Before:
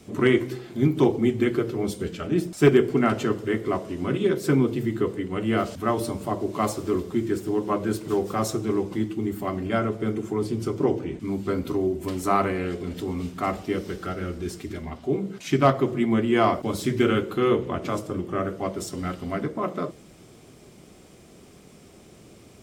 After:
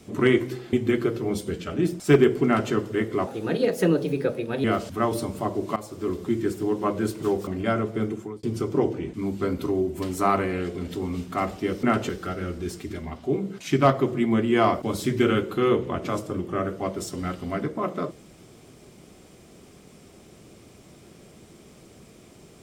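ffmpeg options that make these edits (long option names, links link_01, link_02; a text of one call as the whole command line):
ffmpeg -i in.wav -filter_complex "[0:a]asplit=9[link_01][link_02][link_03][link_04][link_05][link_06][link_07][link_08][link_09];[link_01]atrim=end=0.732[link_10];[link_02]atrim=start=1.258:end=3.804[link_11];[link_03]atrim=start=3.8:end=5.5,asetpts=PTS-STARTPTS,asetrate=54684,aresample=44100[link_12];[link_04]atrim=start=5.496:end=6.62,asetpts=PTS-STARTPTS,afade=type=out:start_time=1.12:duration=0.004:curve=hsin:silence=0.141254[link_13];[link_05]atrim=start=6.62:end=8.332,asetpts=PTS-STARTPTS,afade=type=in:duration=0.48:silence=0.141254[link_14];[link_06]atrim=start=9.528:end=10.49,asetpts=PTS-STARTPTS,afade=type=out:start_time=0.602:duration=0.36[link_15];[link_07]atrim=start=10.49:end=13.892,asetpts=PTS-STARTPTS,afade=type=in:duration=0.004:curve=hsin[link_16];[link_08]atrim=start=2.988:end=3.252[link_17];[link_09]atrim=start=13.888[link_18];[link_10][link_11]acrossfade=duration=0.004:curve1=hsin:curve2=hsin[link_19];[link_19][link_12]acrossfade=duration=0.004:curve1=hsin:curve2=hsin[link_20];[link_13][link_14]concat=n=2:v=0:a=1[link_21];[link_20][link_21]acrossfade=duration=0.004:curve1=hsin:curve2=hsin[link_22];[link_15][link_16]concat=n=2:v=0:a=1[link_23];[link_22][link_23]acrossfade=duration=0.004:curve1=hsin:curve2=hsin[link_24];[link_24][link_17]acrossfade=duration=0.004:curve1=hsin:curve2=hsin[link_25];[link_25][link_18]acrossfade=duration=0.004:curve1=hsin:curve2=hsin" out.wav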